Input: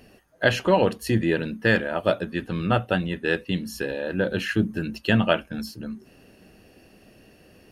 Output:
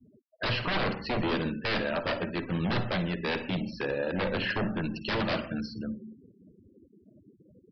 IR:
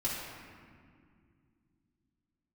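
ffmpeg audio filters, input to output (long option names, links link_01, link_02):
-filter_complex "[0:a]highpass=46,aeval=exprs='0.0794*(abs(mod(val(0)/0.0794+3,4)-2)-1)':channel_layout=same,asplit=2[link_01][link_02];[1:a]atrim=start_sample=2205,atrim=end_sample=6174,adelay=53[link_03];[link_02][link_03]afir=irnorm=-1:irlink=0,volume=-12.5dB[link_04];[link_01][link_04]amix=inputs=2:normalize=0,afftfilt=real='re*gte(hypot(re,im),0.0112)':imag='im*gte(hypot(re,im),0.0112)':win_size=1024:overlap=0.75,aresample=11025,aresample=44100,volume=-1.5dB"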